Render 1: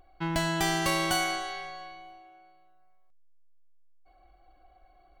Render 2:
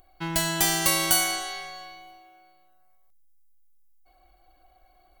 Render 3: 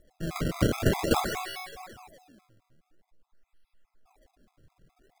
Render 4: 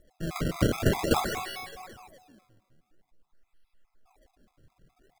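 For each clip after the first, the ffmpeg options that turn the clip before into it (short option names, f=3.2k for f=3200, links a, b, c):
-af "aemphasis=mode=production:type=75fm"
-af "acrusher=samples=29:mix=1:aa=0.000001:lfo=1:lforange=46.4:lforate=0.48,afftfilt=real='re*gt(sin(2*PI*4.8*pts/sr)*(1-2*mod(floor(b*sr/1024/670),2)),0)':imag='im*gt(sin(2*PI*4.8*pts/sr)*(1-2*mod(floor(b*sr/1024/670),2)),0)':win_size=1024:overlap=0.75"
-filter_complex "[0:a]asplit=2[a][b];[b]adelay=256,lowpass=f=910:p=1,volume=-22dB,asplit=2[c][d];[d]adelay=256,lowpass=f=910:p=1,volume=0.42,asplit=2[e][f];[f]adelay=256,lowpass=f=910:p=1,volume=0.42[g];[a][c][e][g]amix=inputs=4:normalize=0"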